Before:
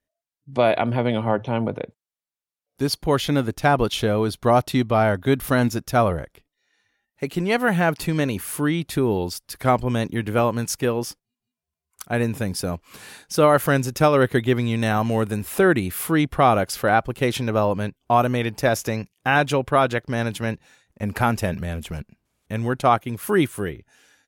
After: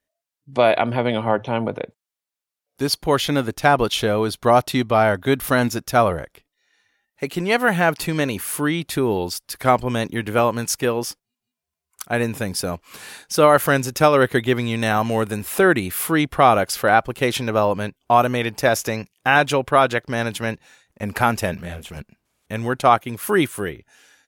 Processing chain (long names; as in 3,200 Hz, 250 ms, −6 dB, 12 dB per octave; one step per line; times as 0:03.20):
low-shelf EQ 320 Hz −7 dB
0:21.57–0:21.97: micro pitch shift up and down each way 54 cents
level +4 dB